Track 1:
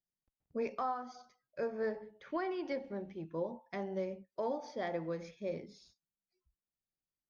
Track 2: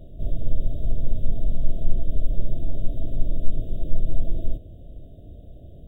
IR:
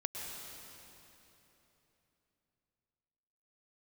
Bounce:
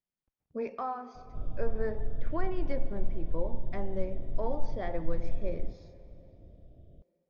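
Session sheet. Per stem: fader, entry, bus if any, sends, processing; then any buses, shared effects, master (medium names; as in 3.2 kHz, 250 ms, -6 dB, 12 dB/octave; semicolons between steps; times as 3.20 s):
0.0 dB, 0.00 s, send -12.5 dB, none
-10.5 dB, 1.15 s, no send, none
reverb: on, RT60 3.4 s, pre-delay 99 ms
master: low-pass 2.3 kHz 6 dB/octave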